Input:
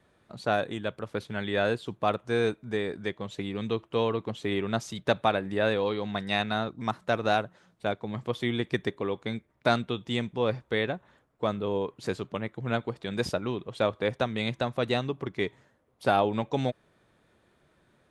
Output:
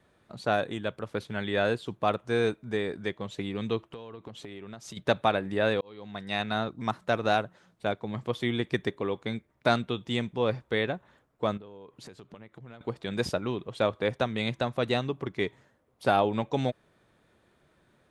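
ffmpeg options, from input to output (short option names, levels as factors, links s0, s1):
-filter_complex "[0:a]asettb=1/sr,asplit=3[s0][s1][s2];[s0]atrim=end=3.844[s3];[s1]atrim=start=3.84:end=4.97,asetpts=PTS-STARTPTS,afade=t=in:d=0.004:c=qsin,afade=t=out:st=1.126:d=0.004:c=qsin,acompressor=threshold=0.0126:ratio=16:attack=3.2:release=140:knee=1:detection=peak[s4];[s2]atrim=start=4.966[s5];[s3][s4]acrossfade=d=0.004:c1=hsin:c2=qsin[s6];[s6][s5]acrossfade=d=0.004:c1=qsin:c2=hsin,asettb=1/sr,asplit=3[s7][s8][s9];[s7]atrim=end=11.574[s10];[s8]atrim=start=11.57:end=12.81,asetpts=PTS-STARTPTS,afade=t=in:d=0.004:c=qsin,afade=t=out:st=1.236:d=0.004:c=qsin,acompressor=threshold=0.00708:ratio=10:attack=3.2:release=140:knee=1:detection=peak[s11];[s9]atrim=start=12.806[s12];[s10][s11]acrossfade=d=0.004:c1=hsin:c2=qsin[s13];[s13][s12]acrossfade=d=0.004:c1=qsin:c2=hsin,asplit=2[s14][s15];[s14]atrim=end=5.81,asetpts=PTS-STARTPTS,afade=t=out:st=5.806:d=0.004:c=hsin[s16];[s15]atrim=start=5.81,asetpts=PTS-STARTPTS,afade=t=in:d=0.78[s17];[s16][s17]concat=n=2:v=0:a=1"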